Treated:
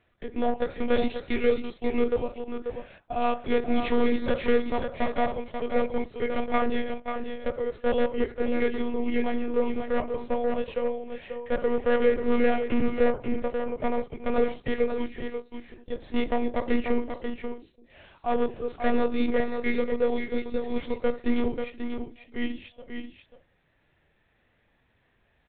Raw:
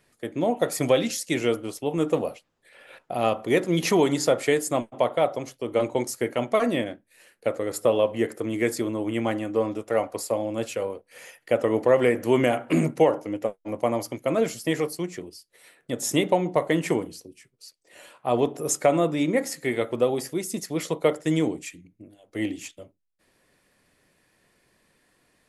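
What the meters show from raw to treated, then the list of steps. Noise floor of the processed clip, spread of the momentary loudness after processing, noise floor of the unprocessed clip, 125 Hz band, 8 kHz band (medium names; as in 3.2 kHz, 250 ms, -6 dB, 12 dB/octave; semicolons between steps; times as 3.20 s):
-68 dBFS, 11 LU, -70 dBFS, -11.0 dB, under -40 dB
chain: hard clipper -17.5 dBFS, distortion -12 dB; monotone LPC vocoder at 8 kHz 240 Hz; on a send: delay 538 ms -7 dB; on the sum: harmonic-percussive split percussive -6 dB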